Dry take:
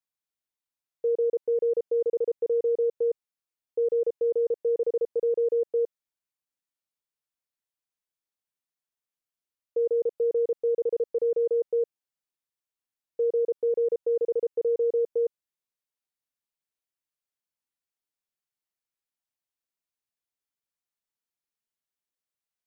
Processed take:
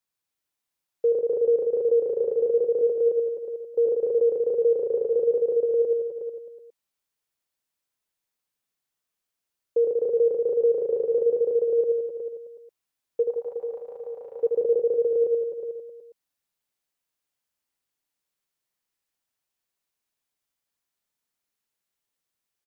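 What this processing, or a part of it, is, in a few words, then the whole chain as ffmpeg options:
ducked delay: -filter_complex "[0:a]asplit=3[a][b][c];[a]afade=t=out:st=13.22:d=0.02[d];[b]lowshelf=f=580:t=q:w=3:g=-12.5,afade=t=in:st=13.22:d=0.02,afade=t=out:st=14.42:d=0.02[e];[c]afade=t=in:st=14.42:d=0.02[f];[d][e][f]amix=inputs=3:normalize=0,asplit=3[g][h][i];[h]adelay=364,volume=-8.5dB[j];[i]apad=whole_len=1015388[k];[j][k]sidechaincompress=threshold=-31dB:ratio=8:attack=16:release=437[l];[g][l]amix=inputs=2:normalize=0,asettb=1/sr,asplit=3[m][n][o];[m]atrim=end=2.814[p];[n]atrim=start=2.81:end=3.87,asetpts=PTS-STARTPTS,afade=t=in:d=0.004:c=qsin,afade=t=out:st=1.056:d=0.004:c=qsin,highpass=150[q];[o]atrim=start=3.866[r];[p][q]acrossfade=d=0.004:c1=hsin:c2=qsin[s];[s][r]acrossfade=d=0.004:c1=qsin:c2=hsin,aecho=1:1:80|168|264.8|371.3|488.4:0.631|0.398|0.251|0.158|0.1,volume=4.5dB"

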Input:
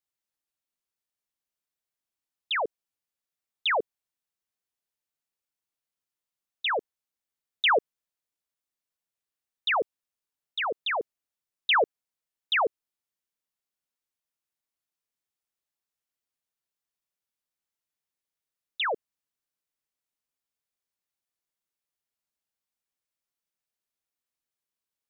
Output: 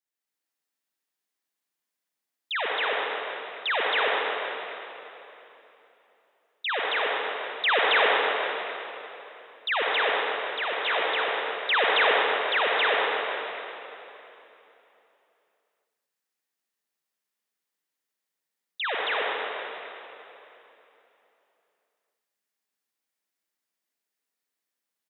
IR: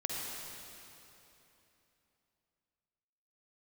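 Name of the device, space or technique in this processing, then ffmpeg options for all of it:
stadium PA: -filter_complex "[0:a]highpass=f=170:w=0.5412,highpass=f=170:w=1.3066,equalizer=f=1.8k:t=o:w=0.48:g=4,aecho=1:1:186.6|271.1:0.251|1[a];[1:a]atrim=start_sample=2205[b];[a][b]afir=irnorm=-1:irlink=0,volume=-2.5dB"

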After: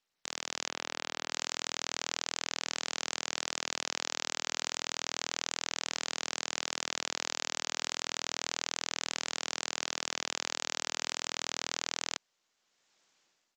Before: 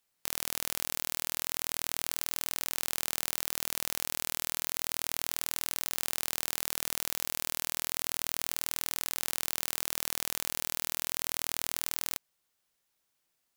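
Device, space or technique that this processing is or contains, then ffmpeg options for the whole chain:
Bluetooth headset: -filter_complex "[0:a]asettb=1/sr,asplit=3[a][b][c];[a]atrim=end=0.684[d];[b]atrim=start=0.68:end=1.3,asetpts=PTS-STARTPTS,afade=t=in:d=0.004:c=qsin,afade=t=out:st=0.616:d=0.004:c=qsin,aemphasis=mode=reproduction:type=50fm[e];[c]atrim=start=1.296[f];[d][e]acrossfade=d=0.004:c1=hsin:c2=qsin[g];[g][f]acrossfade=d=0.004:c1=qsin:c2=hsin,highpass=200,dynaudnorm=f=220:g=5:m=14dB,aresample=16000,aresample=44100,volume=-1.5dB" -ar 32000 -c:a sbc -b:a 64k

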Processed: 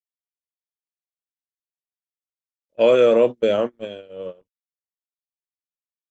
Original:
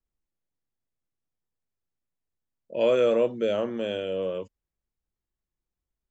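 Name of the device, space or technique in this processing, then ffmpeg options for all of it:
video call: -af "highpass=f=100:p=1,dynaudnorm=f=600:g=5:m=5.5dB,agate=range=-39dB:threshold=-21dB:ratio=16:detection=peak,volume=2dB" -ar 48000 -c:a libopus -b:a 16k

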